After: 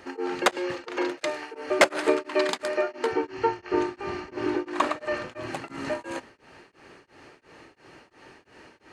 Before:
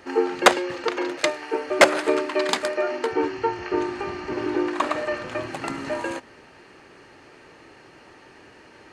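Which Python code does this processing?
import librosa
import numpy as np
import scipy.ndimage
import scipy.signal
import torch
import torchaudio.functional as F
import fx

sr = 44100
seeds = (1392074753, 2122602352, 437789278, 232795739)

y = x * np.abs(np.cos(np.pi * 2.9 * np.arange(len(x)) / sr))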